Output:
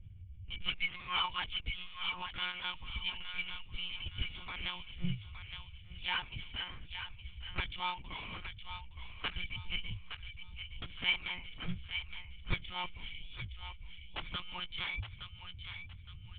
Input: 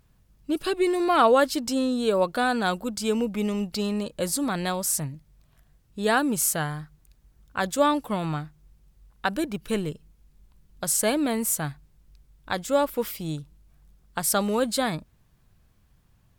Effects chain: FFT band-reject 130–830 Hz; cascade formant filter i; peaking EQ 87 Hz +13.5 dB 1.4 oct; monotone LPC vocoder at 8 kHz 180 Hz; distance through air 76 m; thinning echo 866 ms, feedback 42%, high-pass 1.1 kHz, level -7 dB; trim +16.5 dB

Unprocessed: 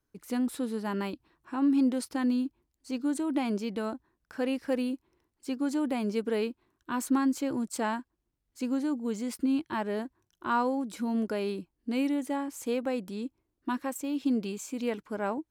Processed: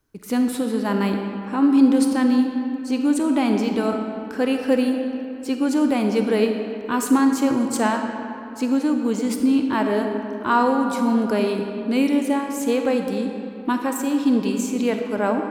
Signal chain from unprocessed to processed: algorithmic reverb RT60 2.9 s, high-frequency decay 0.6×, pre-delay 5 ms, DRR 4 dB; trim +9 dB

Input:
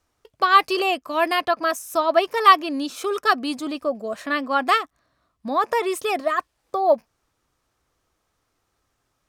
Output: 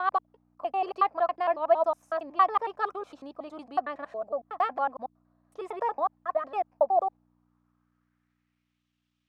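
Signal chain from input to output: slices played last to first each 92 ms, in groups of 6; hum 60 Hz, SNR 19 dB; band-pass sweep 770 Hz -> 3 kHz, 7.19–8.85 s; trim -2 dB

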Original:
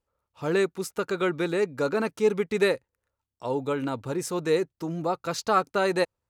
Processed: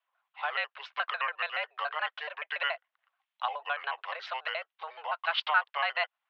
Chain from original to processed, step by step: pitch shift switched off and on -6 st, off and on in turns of 71 ms; recorder AGC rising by 9.7 dB/s; distance through air 110 m; compression 2.5:1, threshold -28 dBFS, peak gain reduction 7.5 dB; tilt EQ +4 dB/octave; mistuned SSB +150 Hz 580–3200 Hz; trim +4.5 dB

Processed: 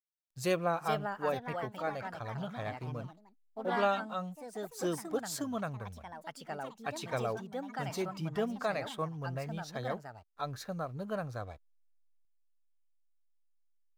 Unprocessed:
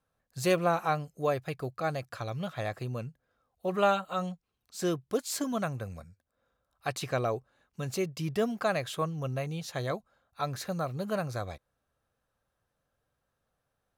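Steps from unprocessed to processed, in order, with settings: hysteresis with a dead band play -49.5 dBFS; ever faster or slower copies 500 ms, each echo +3 st, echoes 3, each echo -6 dB; spectral noise reduction 6 dB; trim -4.5 dB

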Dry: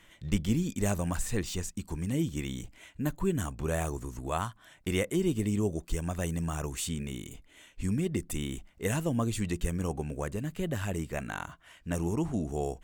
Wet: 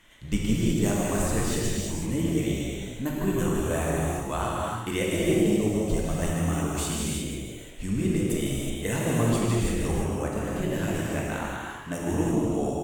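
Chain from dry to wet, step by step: hum notches 50/100/150 Hz; frequency-shifting echo 154 ms, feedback 34%, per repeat +120 Hz, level -9 dB; gated-style reverb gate 390 ms flat, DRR -4 dB

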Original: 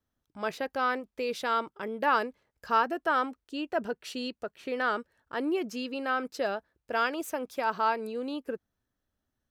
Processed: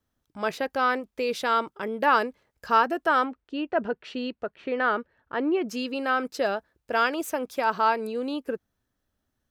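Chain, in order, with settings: 3.24–5.68 s: low-pass 2.8 kHz 12 dB/octave; trim +4.5 dB

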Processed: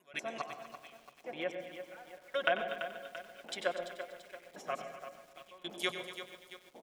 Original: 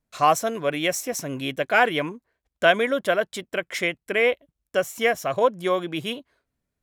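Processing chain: slices played last to first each 190 ms, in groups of 4; pre-emphasis filter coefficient 0.97; low-pass that closes with the level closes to 1 kHz, closed at -33.5 dBFS; comb 5.5 ms, depth 64%; band noise 200–790 Hz -60 dBFS; trance gate ".xx....." 109 bpm -24 dB; echo whose repeats swap between lows and highs 121 ms, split 860 Hz, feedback 56%, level -8.5 dB; reverberation RT60 0.75 s, pre-delay 93 ms, DRR 9.5 dB; bit-crushed delay 338 ms, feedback 55%, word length 10-bit, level -10.5 dB; trim +6.5 dB

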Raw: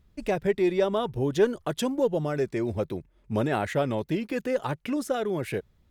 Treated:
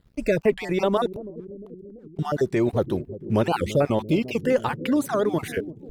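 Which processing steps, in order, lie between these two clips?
random holes in the spectrogram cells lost 30%; in parallel at -1 dB: peak limiter -22 dBFS, peak gain reduction 10.5 dB; 1.06–2.19 s: on the sum: inverted gate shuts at -24 dBFS, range -38 dB; crossover distortion -56.5 dBFS; on a send: bucket-brigade echo 340 ms, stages 1024, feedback 70%, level -13 dB; on the sum: warped record 78 rpm, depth 250 cents; trim +2 dB

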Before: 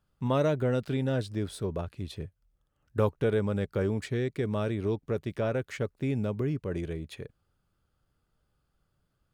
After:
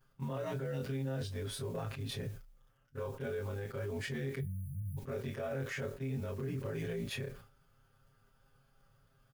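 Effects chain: short-time spectra conjugated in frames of 60 ms; graphic EQ with 31 bands 315 Hz -10 dB, 1.6 kHz +3 dB, 4 kHz -5 dB, 8 kHz -6 dB; reverse; compression 12:1, threshold -40 dBFS, peak gain reduction 17 dB; reverse; modulation noise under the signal 28 dB; spectral selection erased 4.40–4.97 s, 210–8900 Hz; comb 7.5 ms, depth 95%; reverberation RT60 0.20 s, pre-delay 4 ms, DRR 12 dB; peak limiter -37.5 dBFS, peak gain reduction 10 dB; peaking EQ 79 Hz -6.5 dB 0.73 oct; decay stretcher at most 110 dB/s; trim +7.5 dB

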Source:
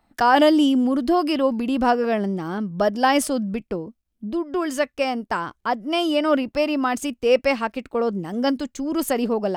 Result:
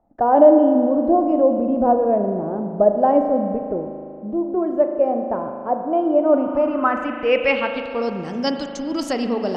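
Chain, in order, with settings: spring tank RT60 2.6 s, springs 38 ms, chirp 65 ms, DRR 5 dB; low-pass sweep 630 Hz -> 5.4 kHz, 6.20–8.10 s; trim -1.5 dB

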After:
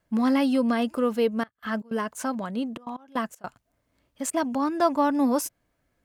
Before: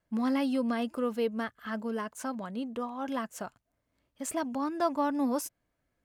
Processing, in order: 1.40–4.33 s: trance gate ".xx.xxxxxxxxx.x." 157 bpm -24 dB; trim +6.5 dB

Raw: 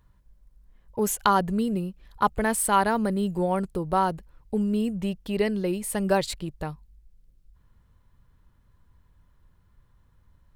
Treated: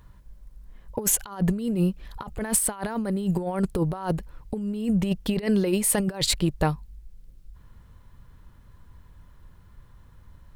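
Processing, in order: 5.46–6.00 s: bass shelf 180 Hz -7 dB; compressor with a negative ratio -29 dBFS, ratio -0.5; trim +5 dB

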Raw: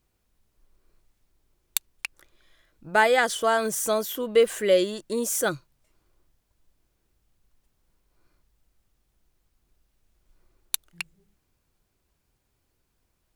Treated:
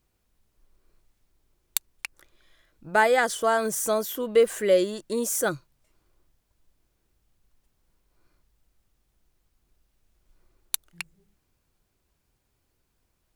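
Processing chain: dynamic bell 3.1 kHz, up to -5 dB, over -40 dBFS, Q 1.3

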